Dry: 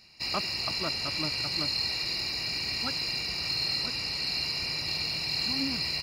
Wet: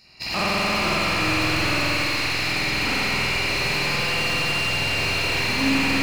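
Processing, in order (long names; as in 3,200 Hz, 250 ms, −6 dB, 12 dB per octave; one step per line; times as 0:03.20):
loose part that buzzes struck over −43 dBFS, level −20 dBFS
0:03.54–0:04.50: comb filter 5.8 ms, depth 54%
bucket-brigade delay 86 ms, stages 4,096, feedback 78%, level −6 dB
spring reverb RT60 3.5 s, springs 48 ms, chirp 45 ms, DRR −9 dB
slew-rate limiting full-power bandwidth 170 Hz
level +2 dB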